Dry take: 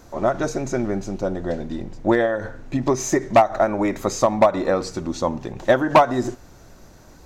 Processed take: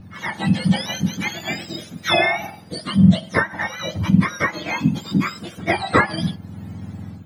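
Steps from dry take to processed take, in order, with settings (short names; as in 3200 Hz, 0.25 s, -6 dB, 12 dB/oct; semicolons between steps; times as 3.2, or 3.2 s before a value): spectrum mirrored in octaves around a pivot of 1100 Hz; tilt -3.5 dB/oct; AGC gain up to 9 dB; gain -1 dB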